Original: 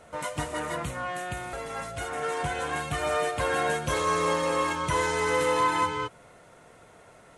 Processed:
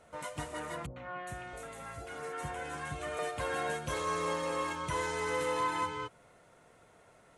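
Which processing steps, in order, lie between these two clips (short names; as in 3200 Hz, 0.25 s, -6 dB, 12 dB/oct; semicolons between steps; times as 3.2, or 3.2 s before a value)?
0.86–3.19 three bands offset in time lows, mids, highs 0.1/0.41 s, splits 730/3400 Hz; gain -8 dB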